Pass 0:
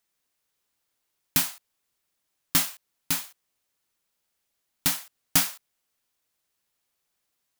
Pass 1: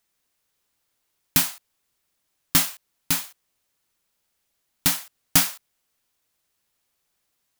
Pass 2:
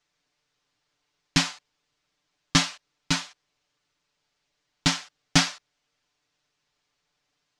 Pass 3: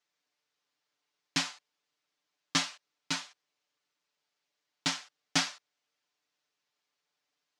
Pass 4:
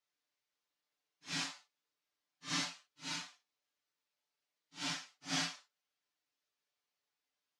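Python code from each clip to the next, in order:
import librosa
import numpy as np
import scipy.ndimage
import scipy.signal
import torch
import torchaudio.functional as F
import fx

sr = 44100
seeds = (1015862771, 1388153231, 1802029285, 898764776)

y1 = fx.low_shelf(x, sr, hz=140.0, db=3.5)
y1 = y1 * 10.0 ** (3.5 / 20.0)
y2 = scipy.signal.sosfilt(scipy.signal.butter(4, 6100.0, 'lowpass', fs=sr, output='sos'), y1)
y2 = y2 + 0.87 * np.pad(y2, (int(6.8 * sr / 1000.0), 0))[:len(y2)]
y3 = scipy.signal.sosfilt(scipy.signal.bessel(2, 280.0, 'highpass', norm='mag', fs=sr, output='sos'), y2)
y3 = y3 * 10.0 ** (-7.0 / 20.0)
y4 = fx.phase_scramble(y3, sr, seeds[0], window_ms=200)
y4 = y4 * 10.0 ** (-6.5 / 20.0)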